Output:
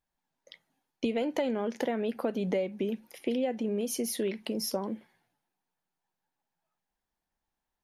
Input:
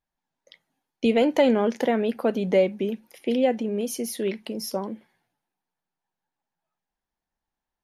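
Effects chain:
downward compressor 6 to 1, threshold −27 dBFS, peak gain reduction 12 dB

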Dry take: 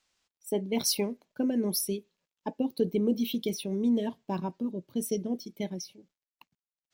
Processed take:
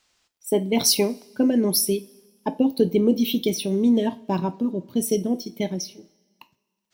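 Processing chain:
coupled-rooms reverb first 0.28 s, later 1.6 s, from −21 dB, DRR 11 dB
level +8.5 dB

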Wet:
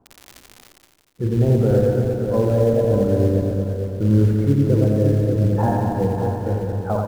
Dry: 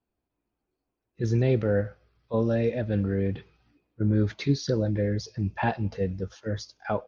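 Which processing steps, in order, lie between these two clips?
feedback delay that plays each chunk backwards 114 ms, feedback 78%, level −5 dB
low-pass filter 1,200 Hz 24 dB per octave
surface crackle 75 per second −46 dBFS
in parallel at −7 dB: floating-point word with a short mantissa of 2 bits
on the sum: multi-tap delay 85/176/590 ms −4.5/−11/−7 dB
reversed playback
upward compression, threshold −26 dBFS
reversed playback
level +1 dB

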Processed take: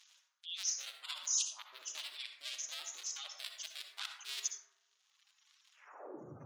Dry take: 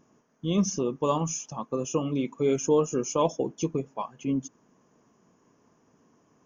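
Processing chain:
sub-harmonics by changed cycles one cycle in 2, inverted
reversed playback
downward compressor 12 to 1, threshold −37 dBFS, peak gain reduction 19.5 dB
reversed playback
high-pass filter sweep 3,600 Hz → 120 Hz, 0:05.72–0:06.31
reverb reduction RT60 2 s
gate on every frequency bin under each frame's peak −20 dB strong
high-shelf EQ 2,300 Hz −7.5 dB
on a send: convolution reverb RT60 1.0 s, pre-delay 52 ms, DRR 4 dB
on the sum: level +12 dB

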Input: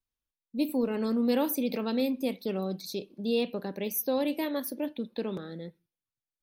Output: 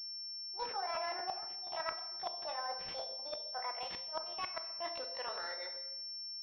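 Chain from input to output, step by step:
pitch glide at a constant tempo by +9 semitones ending unshifted
high-pass filter 850 Hz 24 dB per octave
gate with flip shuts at −27 dBFS, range −35 dB
reversed playback
downward compressor 5 to 1, threshold −52 dBFS, peak gain reduction 15.5 dB
reversed playback
rectangular room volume 550 cubic metres, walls mixed, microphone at 0.67 metres
regular buffer underruns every 0.24 s, samples 512, repeat, from 0:00.46
switching amplifier with a slow clock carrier 5,400 Hz
level +13 dB

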